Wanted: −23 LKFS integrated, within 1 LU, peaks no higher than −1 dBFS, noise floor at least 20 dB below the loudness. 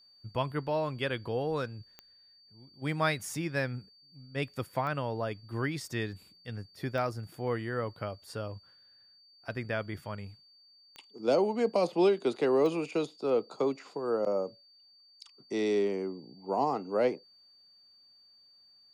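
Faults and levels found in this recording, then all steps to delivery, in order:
number of clicks 5; interfering tone 4,600 Hz; level of the tone −58 dBFS; integrated loudness −32.0 LKFS; sample peak −15.0 dBFS; target loudness −23.0 LKFS
→ click removal
notch filter 4,600 Hz, Q 30
level +9 dB

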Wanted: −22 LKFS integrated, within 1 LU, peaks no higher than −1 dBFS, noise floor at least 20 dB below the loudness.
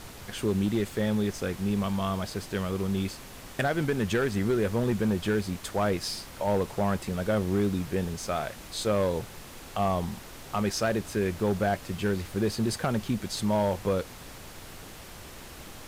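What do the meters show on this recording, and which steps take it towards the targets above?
share of clipped samples 1.1%; peaks flattened at −19.5 dBFS; background noise floor −45 dBFS; target noise floor −49 dBFS; integrated loudness −29.0 LKFS; sample peak −19.5 dBFS; target loudness −22.0 LKFS
→ clipped peaks rebuilt −19.5 dBFS
noise reduction from a noise print 6 dB
level +7 dB

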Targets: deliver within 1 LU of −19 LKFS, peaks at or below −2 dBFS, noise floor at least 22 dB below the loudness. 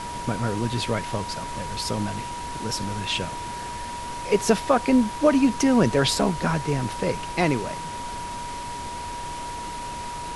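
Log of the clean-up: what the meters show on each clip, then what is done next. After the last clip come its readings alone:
interfering tone 960 Hz; level of the tone −32 dBFS; background noise floor −34 dBFS; target noise floor −48 dBFS; integrated loudness −25.5 LKFS; sample peak −6.5 dBFS; target loudness −19.0 LKFS
→ notch filter 960 Hz, Q 30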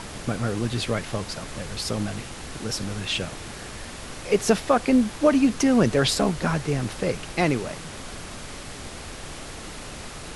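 interfering tone none found; background noise floor −38 dBFS; target noise floor −47 dBFS
→ noise reduction from a noise print 9 dB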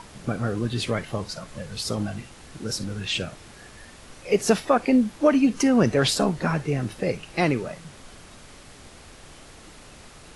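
background noise floor −47 dBFS; integrated loudness −24.5 LKFS; sample peak −6.5 dBFS; target loudness −19.0 LKFS
→ level +5.5 dB
brickwall limiter −2 dBFS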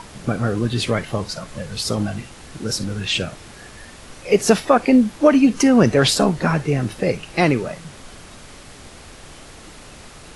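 integrated loudness −19.0 LKFS; sample peak −2.0 dBFS; background noise floor −42 dBFS

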